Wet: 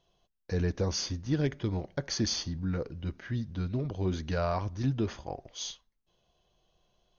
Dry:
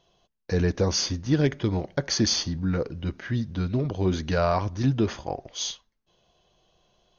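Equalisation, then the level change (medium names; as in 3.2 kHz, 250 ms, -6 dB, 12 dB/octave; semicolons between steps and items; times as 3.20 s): bass shelf 76 Hz +7 dB; -7.5 dB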